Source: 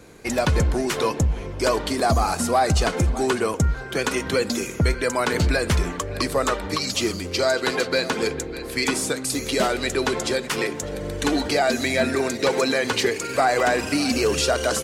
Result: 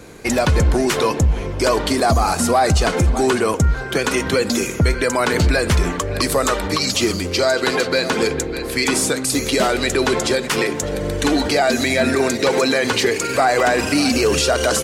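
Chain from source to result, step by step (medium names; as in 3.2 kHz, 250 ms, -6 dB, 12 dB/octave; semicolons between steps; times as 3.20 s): 6.21–6.68 s: treble shelf 5.2 kHz +7 dB; loudness maximiser +14 dB; trim -7 dB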